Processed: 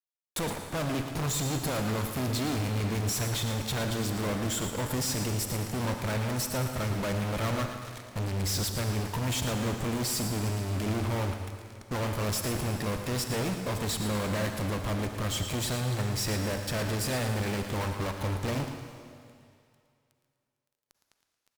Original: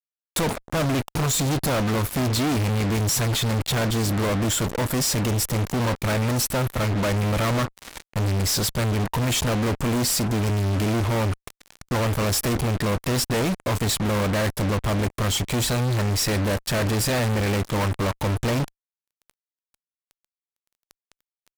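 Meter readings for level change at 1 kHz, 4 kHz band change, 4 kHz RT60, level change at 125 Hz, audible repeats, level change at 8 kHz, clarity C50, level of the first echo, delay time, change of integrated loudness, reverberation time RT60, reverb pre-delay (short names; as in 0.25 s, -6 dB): -7.0 dB, -7.0 dB, 2.5 s, -7.5 dB, 2, -7.5 dB, 5.0 dB, -10.0 dB, 0.113 s, -7.5 dB, 2.4 s, 36 ms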